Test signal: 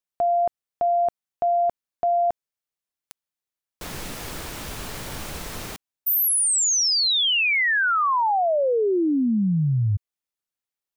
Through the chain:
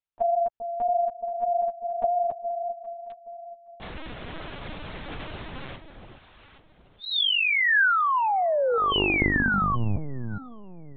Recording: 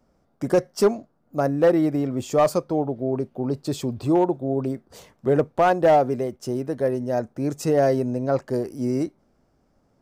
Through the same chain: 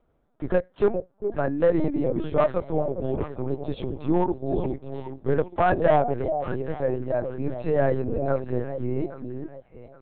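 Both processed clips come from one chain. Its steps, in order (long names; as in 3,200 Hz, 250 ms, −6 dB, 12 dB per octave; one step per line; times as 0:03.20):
dynamic equaliser 1,600 Hz, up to +5 dB, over −41 dBFS, Q 3.4
delay that swaps between a low-pass and a high-pass 411 ms, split 800 Hz, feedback 54%, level −7 dB
linear-prediction vocoder at 8 kHz pitch kept
level −3 dB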